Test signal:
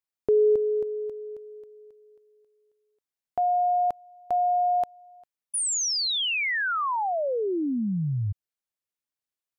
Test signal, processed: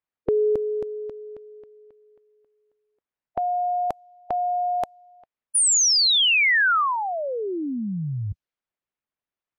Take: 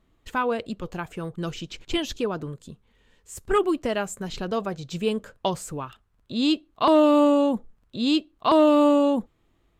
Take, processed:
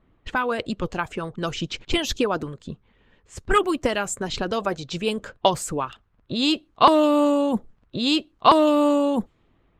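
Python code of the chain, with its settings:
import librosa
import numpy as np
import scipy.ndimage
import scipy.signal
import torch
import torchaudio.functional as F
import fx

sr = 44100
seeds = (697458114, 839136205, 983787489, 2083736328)

y = fx.hpss(x, sr, part='percussive', gain_db=9)
y = fx.env_lowpass(y, sr, base_hz=2300.0, full_db=-19.5)
y = y * librosa.db_to_amplitude(-1.0)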